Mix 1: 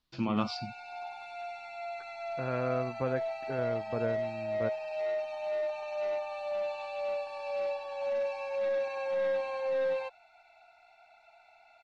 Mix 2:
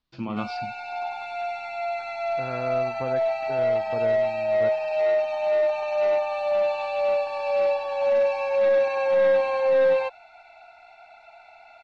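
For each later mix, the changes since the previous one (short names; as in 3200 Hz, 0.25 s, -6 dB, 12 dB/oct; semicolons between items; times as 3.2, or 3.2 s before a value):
background +11.0 dB; master: add high shelf 5500 Hz -8.5 dB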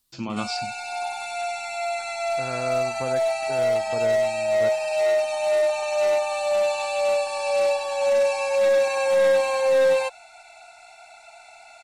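master: remove air absorption 290 m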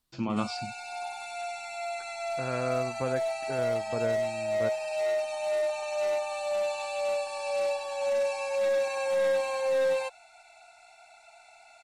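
first voice: add high shelf 3500 Hz -12 dB; background -7.5 dB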